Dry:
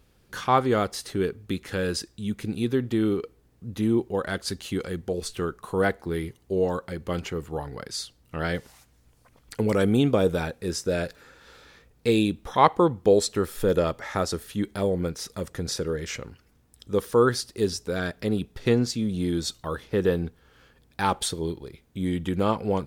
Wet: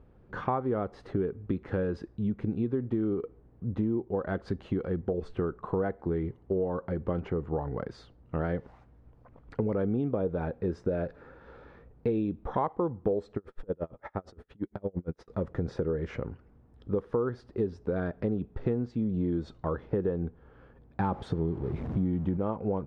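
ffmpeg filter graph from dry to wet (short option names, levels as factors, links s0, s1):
-filter_complex "[0:a]asettb=1/sr,asplit=3[s0][s1][s2];[s0]atrim=end=13.374[s3];[s1]atrim=start=13.37:end=15.28,asetpts=PTS-STARTPTS,afade=t=in:d=0.004:c=qsin,afade=t=out:st=1.906:d=0.004:c=qsin,acompressor=threshold=0.0501:ratio=6:attack=3.2:release=140:knee=1:detection=peak,aeval=exprs='val(0)*pow(10,-38*(0.5-0.5*cos(2*PI*8.7*n/s))/20)':c=same[s4];[s2]atrim=start=15.276[s5];[s3][s4]acrossfade=d=0.004:c1=hsin:c2=qsin[s6];[s6][s5]acrossfade=d=0.004:c1=qsin:c2=hsin,asettb=1/sr,asplit=3[s7][s8][s9];[s7]atrim=end=21.004[s10];[s8]atrim=start=21:end=22.37,asetpts=PTS-STARTPTS,afade=t=in:d=0.004:c=qsin,afade=t=out:st=1.366:d=0.004:c=qsin,aeval=exprs='val(0)+0.5*0.0168*sgn(val(0))':c=same,highpass=f=130:p=1,bass=f=250:g=10,treble=f=4000:g=3[s11];[s9]atrim=start=22.366[s12];[s10][s11]acrossfade=d=0.004:c1=hsin:c2=qsin[s13];[s13][s12]acrossfade=d=0.004:c1=qsin:c2=hsin,lowpass=1000,acompressor=threshold=0.0282:ratio=6,volume=1.68"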